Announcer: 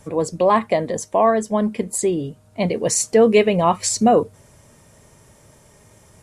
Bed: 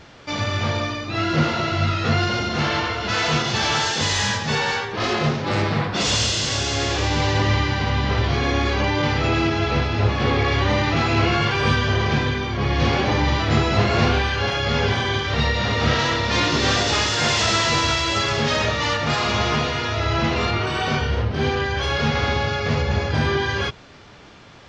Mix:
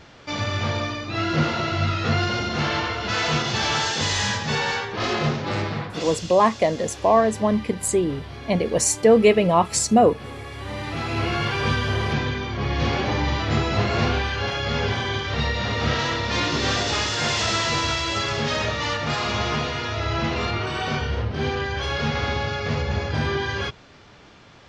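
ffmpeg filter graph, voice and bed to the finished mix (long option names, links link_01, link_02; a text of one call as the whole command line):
ffmpeg -i stem1.wav -i stem2.wav -filter_complex "[0:a]adelay=5900,volume=-1dB[link_01];[1:a]volume=11dB,afade=type=out:start_time=5.34:duration=0.86:silence=0.188365,afade=type=in:start_time=10.54:duration=0.98:silence=0.223872[link_02];[link_01][link_02]amix=inputs=2:normalize=0" out.wav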